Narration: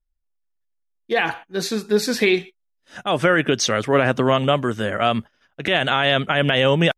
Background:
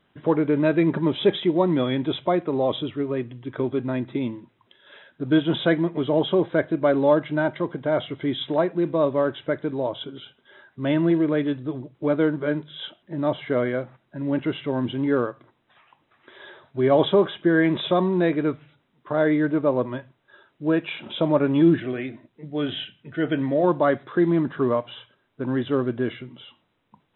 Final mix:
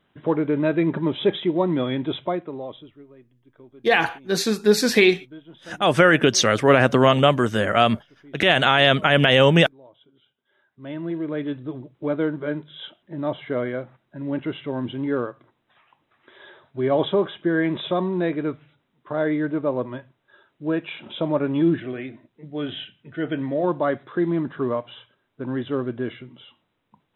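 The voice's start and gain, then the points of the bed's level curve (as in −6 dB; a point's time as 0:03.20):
2.75 s, +2.0 dB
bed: 0:02.21 −1 dB
0:03.14 −23 dB
0:10.06 −23 dB
0:11.54 −2.5 dB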